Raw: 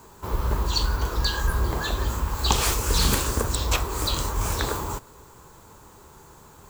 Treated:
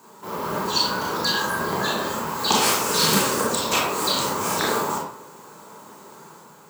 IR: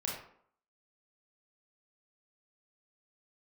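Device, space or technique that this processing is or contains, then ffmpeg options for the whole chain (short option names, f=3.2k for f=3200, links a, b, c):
far laptop microphone: -filter_complex "[1:a]atrim=start_sample=2205[a];[0:a][a]afir=irnorm=-1:irlink=0,highpass=f=170:w=0.5412,highpass=f=170:w=1.3066,dynaudnorm=f=120:g=7:m=3.5dB"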